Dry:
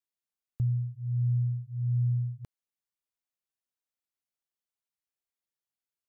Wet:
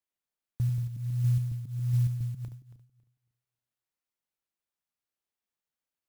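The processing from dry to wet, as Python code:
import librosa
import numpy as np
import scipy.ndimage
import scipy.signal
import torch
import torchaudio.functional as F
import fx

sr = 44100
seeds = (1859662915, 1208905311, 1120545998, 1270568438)

y = fx.reverse_delay_fb(x, sr, ms=138, feedback_pct=44, wet_db=-8)
y = fx.clock_jitter(y, sr, seeds[0], jitter_ms=0.053)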